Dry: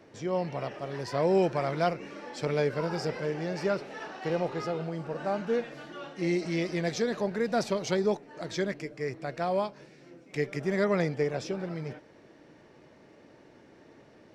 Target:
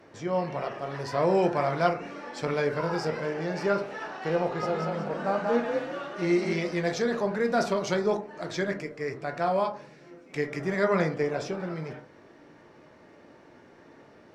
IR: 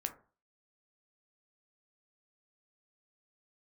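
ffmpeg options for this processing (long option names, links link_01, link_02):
-filter_complex "[0:a]equalizer=frequency=1200:width=0.87:gain=4.5,asettb=1/sr,asplit=3[link_01][link_02][link_03];[link_01]atrim=end=4.444[link_04];[link_02]atrim=start=4.44:end=6.53,asetpts=PTS-STARTPTS,afade=type=in:duration=0.004:curve=qsin,afade=type=out:start_time=2.086:duration=0.004:curve=qsin,asplit=6[link_05][link_06][link_07][link_08][link_09][link_10];[link_06]adelay=187,afreqshift=38,volume=-3.5dB[link_11];[link_07]adelay=374,afreqshift=76,volume=-12.1dB[link_12];[link_08]adelay=561,afreqshift=114,volume=-20.8dB[link_13];[link_09]adelay=748,afreqshift=152,volume=-29.4dB[link_14];[link_10]adelay=935,afreqshift=190,volume=-38dB[link_15];[link_05][link_11][link_12][link_13][link_14][link_15]amix=inputs=6:normalize=0,atrim=end_sample=92169[link_16];[link_03]atrim=start=6.526[link_17];[link_04][link_16]acrossfade=duration=0.004:curve1=hsin:curve2=qsin[link_18];[link_18][link_17]acrossfade=duration=0.004:curve1=qsin:curve2=hsin[link_19];[1:a]atrim=start_sample=2205,asetrate=38367,aresample=44100[link_20];[link_19][link_20]afir=irnorm=-1:irlink=0"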